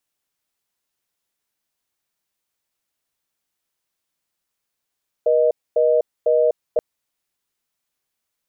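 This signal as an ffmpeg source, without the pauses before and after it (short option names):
-f lavfi -i "aevalsrc='0.158*(sin(2*PI*480*t)+sin(2*PI*620*t))*clip(min(mod(t,0.5),0.25-mod(t,0.5))/0.005,0,1)':d=1.53:s=44100"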